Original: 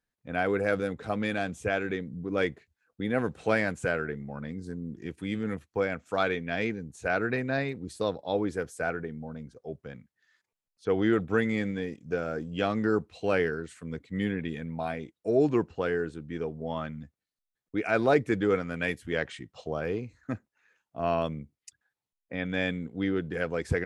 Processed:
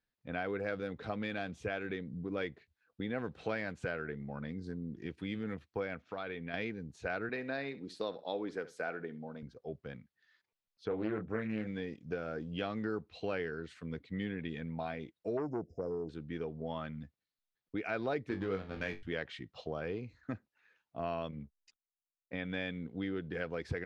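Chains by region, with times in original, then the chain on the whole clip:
6.02–6.54 s: boxcar filter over 5 samples + compression 2.5:1, threshold -36 dBFS
7.29–9.43 s: high-pass 220 Hz + flutter echo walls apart 11.1 m, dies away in 0.22 s
10.88–11.67 s: peaking EQ 3.7 kHz -14 dB 1.1 oct + doubling 28 ms -6 dB + loudspeaker Doppler distortion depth 0.31 ms
15.37–16.09 s: brick-wall FIR band-stop 730–4900 Hz + transformer saturation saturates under 560 Hz
18.29–19.03 s: low-pass 3.1 kHz + hysteresis with a dead band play -31.5 dBFS + flutter echo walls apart 3.6 m, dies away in 0.2 s
21.31–22.33 s: hysteresis with a dead band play -57.5 dBFS + distance through air 99 m + three-phase chorus
whole clip: resonant high shelf 6.1 kHz -11.5 dB, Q 1.5; compression 2.5:1, threshold -33 dBFS; trim -3 dB

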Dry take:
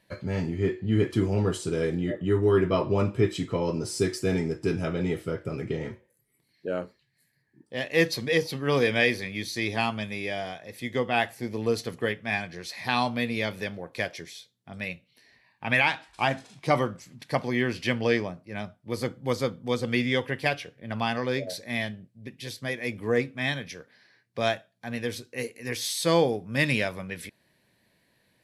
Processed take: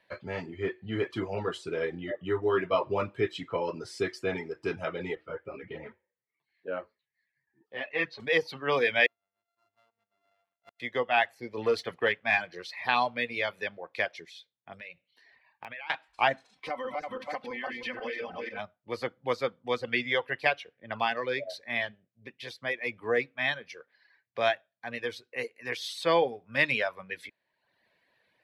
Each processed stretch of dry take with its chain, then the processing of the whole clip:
5.15–8.20 s: low-pass 3.1 kHz + three-phase chorus
9.06–10.80 s: sorted samples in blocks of 64 samples + inverted gate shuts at -29 dBFS, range -41 dB
11.57–12.67 s: band-stop 6.5 kHz, Q 29 + waveshaping leveller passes 1
14.72–15.90 s: compression 8:1, threshold -38 dBFS + integer overflow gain 24 dB
16.52–18.59 s: backward echo that repeats 164 ms, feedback 44%, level -0.5 dB + compression 5:1, threshold -31 dBFS + comb 3.9 ms, depth 70%
whole clip: reverb removal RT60 0.83 s; three-band isolator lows -14 dB, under 450 Hz, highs -18 dB, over 3.9 kHz; trim +2 dB

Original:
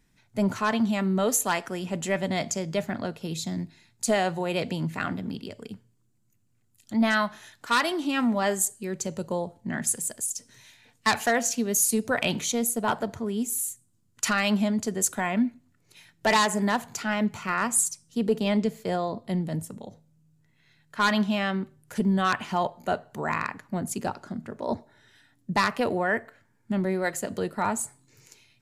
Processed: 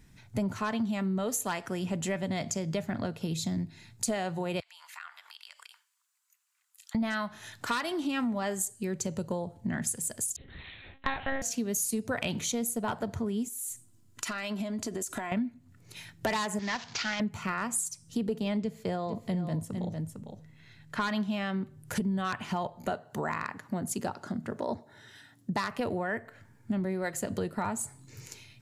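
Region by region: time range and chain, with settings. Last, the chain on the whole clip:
4.60–6.95 s: steep high-pass 980 Hz + compression 3:1, threshold -53 dBFS
10.36–11.42 s: doubling 48 ms -5 dB + monotone LPC vocoder at 8 kHz 270 Hz
13.48–15.32 s: peaking EQ 64 Hz -8 dB 2.3 oct + comb 3 ms, depth 43% + compression, threshold -36 dBFS
16.59–17.20 s: CVSD coder 32 kbps + de-esser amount 85% + tilt shelf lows -9 dB, about 1.3 kHz
18.61–21.12 s: treble shelf 8.6 kHz -5.5 dB + delay 454 ms -12 dB
22.90–25.71 s: high-pass 220 Hz 6 dB/octave + peaking EQ 2.4 kHz -4.5 dB 0.22 oct
whole clip: peaking EQ 84 Hz +9 dB 1.8 oct; compression 4:1, threshold -37 dBFS; trim +6 dB

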